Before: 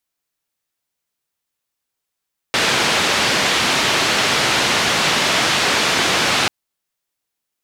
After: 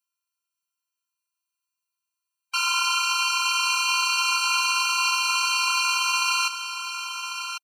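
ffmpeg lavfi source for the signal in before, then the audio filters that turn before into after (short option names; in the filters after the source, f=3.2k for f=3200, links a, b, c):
-f lavfi -i "anoisesrc=c=white:d=3.94:r=44100:seed=1,highpass=f=110,lowpass=f=3900,volume=-4.9dB"
-filter_complex "[0:a]afftfilt=real='hypot(re,im)*cos(PI*b)':imag='0':win_size=512:overlap=0.75,asplit=2[a][b];[b]aecho=0:1:1096:0.376[c];[a][c]amix=inputs=2:normalize=0,afftfilt=real='re*eq(mod(floor(b*sr/1024/780),2),1)':imag='im*eq(mod(floor(b*sr/1024/780),2),1)':win_size=1024:overlap=0.75"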